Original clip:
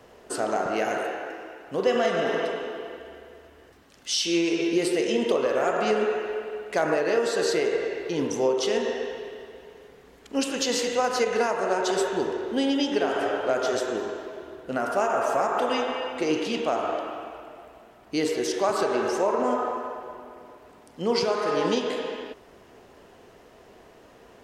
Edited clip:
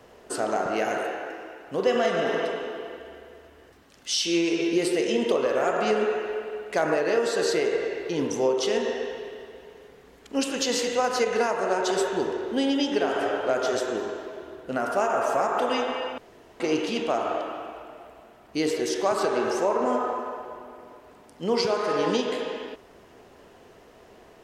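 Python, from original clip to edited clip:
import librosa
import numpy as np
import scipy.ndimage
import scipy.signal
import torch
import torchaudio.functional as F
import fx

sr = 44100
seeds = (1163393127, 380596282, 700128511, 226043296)

y = fx.edit(x, sr, fx.insert_room_tone(at_s=16.18, length_s=0.42), tone=tone)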